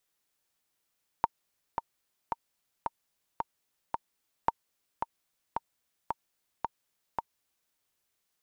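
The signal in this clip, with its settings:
click track 111 BPM, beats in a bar 6, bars 2, 924 Hz, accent 6.5 dB −10.5 dBFS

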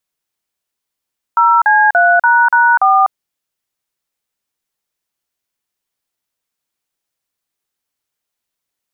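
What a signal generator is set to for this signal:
touch tones "0C3##4", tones 248 ms, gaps 41 ms, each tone −9.5 dBFS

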